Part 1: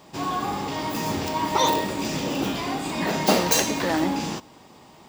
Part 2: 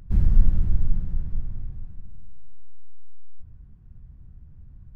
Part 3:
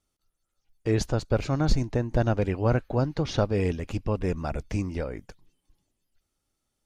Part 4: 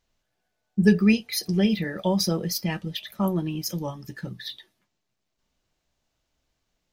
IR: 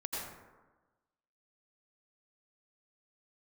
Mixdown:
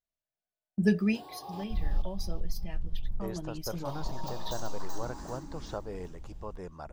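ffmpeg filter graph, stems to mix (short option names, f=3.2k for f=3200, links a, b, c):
-filter_complex "[0:a]equalizer=f=2.1k:w=2.4:g=-8.5,acompressor=threshold=-28dB:ratio=6,asplit=2[a][b];[b]afreqshift=0.42[c];[a][c]amix=inputs=2:normalize=1,adelay=1000,volume=-10.5dB,asplit=3[d][e][f];[d]atrim=end=1.64,asetpts=PTS-STARTPTS,afade=t=out:st=1.636:d=0.004:c=hsin[g];[e]atrim=start=1.64:end=3.85,asetpts=PTS-STARTPTS,volume=0[h];[f]atrim=start=3.85,asetpts=PTS-STARTPTS,afade=t=in:d=0.004:c=hsin[i];[g][h][i]concat=n=3:v=0:a=1,asplit=2[j][k];[k]volume=-5dB[l];[1:a]equalizer=f=1.3k:w=0.86:g=-10.5,adelay=1600,volume=1.5dB[m];[2:a]adelay=2350,volume=-12dB[n];[3:a]agate=range=-16dB:threshold=-38dB:ratio=16:detection=peak,equalizer=f=640:t=o:w=0.21:g=9,volume=3dB,afade=t=out:st=1:d=0.29:silence=0.298538,afade=t=in:st=3.17:d=0.68:silence=0.316228,asplit=2[o][p];[p]apad=whole_len=289114[q];[m][q]sidechaincompress=threshold=-50dB:ratio=8:attack=16:release=203[r];[j][r][n]amix=inputs=3:normalize=0,equalizer=f=100:t=o:w=0.67:g=-10,equalizer=f=250:t=o:w=0.67:g=-7,equalizer=f=1k:t=o:w=0.67:g=6,equalizer=f=2.5k:t=o:w=0.67:g=-9,acompressor=threshold=-24dB:ratio=6,volume=0dB[s];[l]aecho=0:1:382|764|1146|1528|1910:1|0.37|0.137|0.0507|0.0187[t];[o][s][t]amix=inputs=3:normalize=0"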